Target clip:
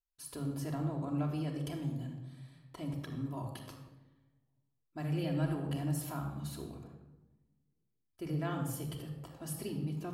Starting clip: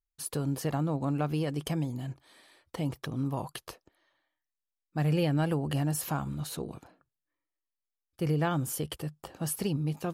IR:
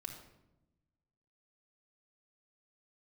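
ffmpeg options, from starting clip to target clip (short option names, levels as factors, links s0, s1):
-filter_complex "[1:a]atrim=start_sample=2205,asetrate=38808,aresample=44100[s0];[0:a][s0]afir=irnorm=-1:irlink=0,volume=0.531"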